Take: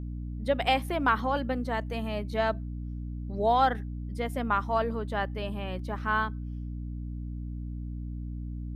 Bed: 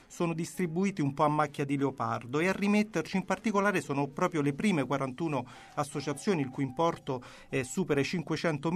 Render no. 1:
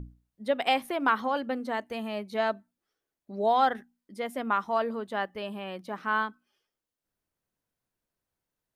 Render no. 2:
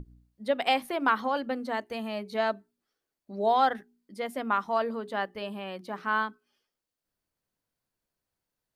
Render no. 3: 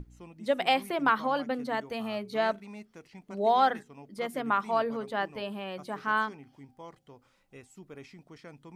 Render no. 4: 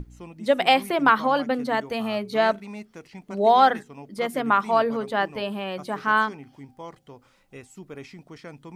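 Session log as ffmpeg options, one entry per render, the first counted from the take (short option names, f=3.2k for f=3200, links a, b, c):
-af "bandreject=f=60:t=h:w=6,bandreject=f=120:t=h:w=6,bandreject=f=180:t=h:w=6,bandreject=f=240:t=h:w=6,bandreject=f=300:t=h:w=6"
-af "equalizer=f=4.5k:w=6.8:g=4.5,bandreject=f=60:t=h:w=6,bandreject=f=120:t=h:w=6,bandreject=f=180:t=h:w=6,bandreject=f=240:t=h:w=6,bandreject=f=300:t=h:w=6,bandreject=f=360:t=h:w=6,bandreject=f=420:t=h:w=6"
-filter_complex "[1:a]volume=-18.5dB[a];[0:a][a]amix=inputs=2:normalize=0"
-af "volume=7dB"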